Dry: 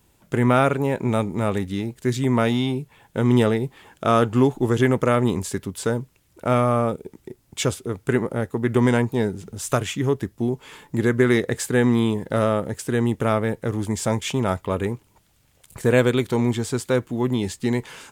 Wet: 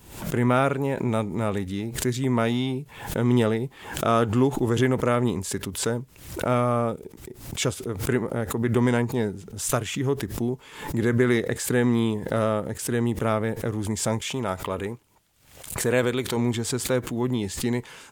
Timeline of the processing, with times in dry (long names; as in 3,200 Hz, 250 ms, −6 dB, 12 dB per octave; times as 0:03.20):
0:14.19–0:16.37: low-shelf EQ 290 Hz −5.5 dB
whole clip: background raised ahead of every attack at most 86 dB per second; level −3.5 dB